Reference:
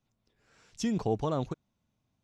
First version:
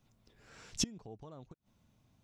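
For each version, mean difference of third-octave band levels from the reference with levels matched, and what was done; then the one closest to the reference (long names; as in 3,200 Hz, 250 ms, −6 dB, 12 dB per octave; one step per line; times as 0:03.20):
11.0 dB: low-shelf EQ 160 Hz +3 dB
gate with flip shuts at −25 dBFS, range −28 dB
level +7 dB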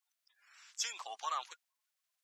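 16.0 dB: spectral magnitudes quantised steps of 30 dB
high-pass filter 1,200 Hz 24 dB per octave
level +5 dB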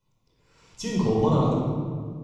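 5.5 dB: thirty-one-band graphic EQ 630 Hz −3 dB, 1,000 Hz +6 dB, 1,600 Hz −11 dB
rectangular room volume 2,700 cubic metres, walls mixed, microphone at 4.9 metres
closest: third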